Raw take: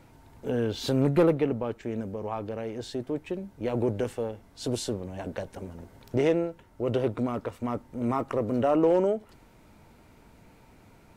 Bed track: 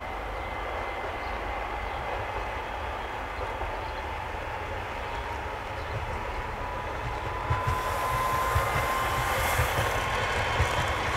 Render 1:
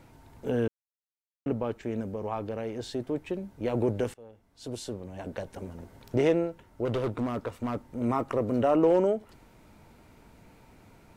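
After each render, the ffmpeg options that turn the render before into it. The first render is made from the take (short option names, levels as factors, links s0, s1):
-filter_complex "[0:a]asettb=1/sr,asplit=3[s0][s1][s2];[s0]atrim=end=6.854[s3];[s1]atrim=start=6.85:end=7.87,asetpts=PTS-STARTPTS,afade=t=in:d=0.004:c=qsin,afade=t=out:st=1.016:d=0.004:c=qsin,asoftclip=type=hard:threshold=0.0562[s4];[s2]atrim=start=7.866[s5];[s3][s4]acrossfade=d=0.004:c1=hsin:c2=qsin[s6];[s6][s5]acrossfade=d=0.004:c1=qsin:c2=hsin,asplit=4[s7][s8][s9][s10];[s7]atrim=end=0.68,asetpts=PTS-STARTPTS,afade=t=out:st=0.676:d=0.004:c=hsin[s11];[s8]atrim=start=0.68:end=1.46,asetpts=PTS-STARTPTS,volume=0[s12];[s9]atrim=start=1.46:end=4.14,asetpts=PTS-STARTPTS,afade=t=in:d=0.004:c=hsin,afade=t=out:st=2.676:d=0.004:c=hsin:silence=0.0749894[s13];[s10]atrim=start=4.14,asetpts=PTS-STARTPTS,afade=t=in:d=1.55:silence=0.0749894[s14];[s11][s12][s13][s14]concat=n=4:v=0:a=1"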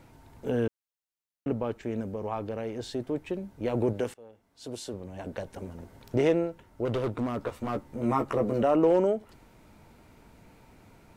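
-filter_complex "[0:a]asettb=1/sr,asplit=3[s0][s1][s2];[s0]atrim=end=3.934[s3];[s1]atrim=start=3.93:end=4.94,asetpts=PTS-STARTPTS,afade=t=in:d=0.004:c=qsin,afade=t=out:st=1.006:d=0.004:c=qsin,lowshelf=f=110:g=-10.5[s4];[s2]atrim=start=4.936[s5];[s3][s4]acrossfade=d=0.004:c1=hsin:c2=qsin[s6];[s6][s5]acrossfade=d=0.004:c1=qsin:c2=hsin,asettb=1/sr,asplit=3[s7][s8][s9];[s7]atrim=end=7.394[s10];[s8]atrim=start=7.39:end=8.63,asetpts=PTS-STARTPTS,afade=t=in:d=0.004:c=qsin,afade=t=out:st=1.236:d=0.004:c=qsin,asplit=2[s11][s12];[s12]adelay=14,volume=0.708[s13];[s11][s13]amix=inputs=2:normalize=0,atrim=end_sample=54684[s14];[s9]atrim=start=8.626[s15];[s10][s14]acrossfade=d=0.004:c1=hsin:c2=qsin[s16];[s16][s15]acrossfade=d=0.004:c1=qsin:c2=hsin"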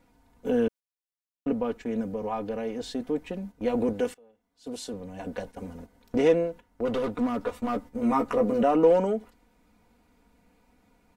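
-af "agate=range=0.316:threshold=0.00794:ratio=16:detection=peak,aecho=1:1:4.1:0.75"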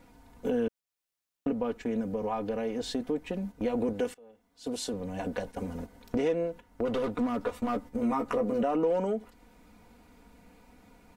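-filter_complex "[0:a]asplit=2[s0][s1];[s1]alimiter=limit=0.133:level=0:latency=1:release=141,volume=1.12[s2];[s0][s2]amix=inputs=2:normalize=0,acompressor=threshold=0.02:ratio=2"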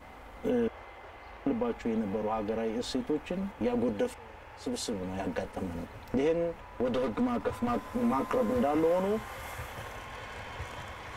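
-filter_complex "[1:a]volume=0.178[s0];[0:a][s0]amix=inputs=2:normalize=0"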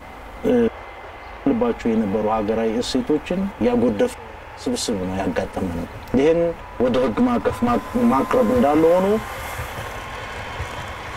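-af "volume=3.76"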